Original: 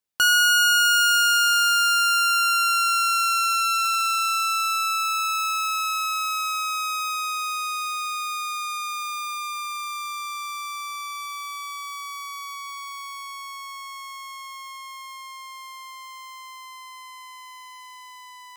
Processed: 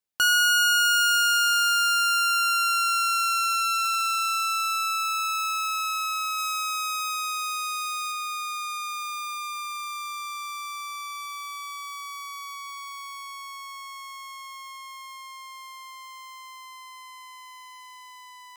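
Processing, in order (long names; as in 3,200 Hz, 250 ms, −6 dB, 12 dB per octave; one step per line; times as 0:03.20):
0:06.38–0:08.12: bass and treble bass +10 dB, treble +3 dB
level −2.5 dB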